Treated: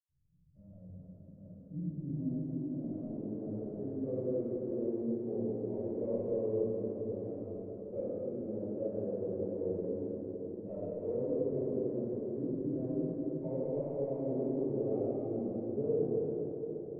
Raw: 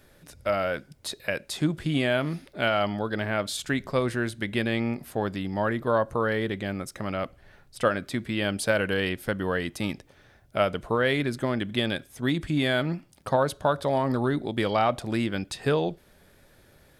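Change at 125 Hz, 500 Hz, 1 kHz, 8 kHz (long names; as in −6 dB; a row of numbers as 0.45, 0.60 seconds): −10.5 dB, −7.0 dB, −25.5 dB, below −40 dB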